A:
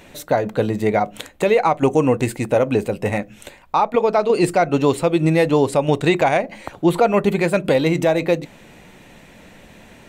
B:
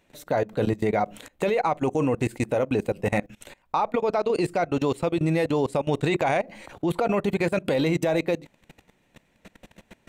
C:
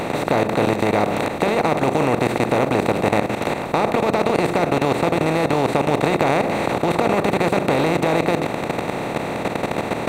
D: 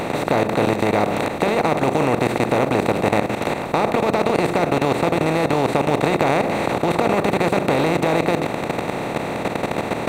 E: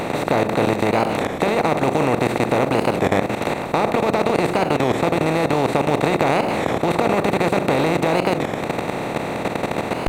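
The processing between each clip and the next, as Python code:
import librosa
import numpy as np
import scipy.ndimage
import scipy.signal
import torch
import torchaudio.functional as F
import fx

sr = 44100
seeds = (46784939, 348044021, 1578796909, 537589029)

y1 = fx.level_steps(x, sr, step_db=22)
y2 = fx.bin_compress(y1, sr, power=0.2)
y2 = y2 * 10.0 ** (-3.0 / 20.0)
y3 = fx.quant_float(y2, sr, bits=6)
y4 = fx.record_warp(y3, sr, rpm=33.33, depth_cents=160.0)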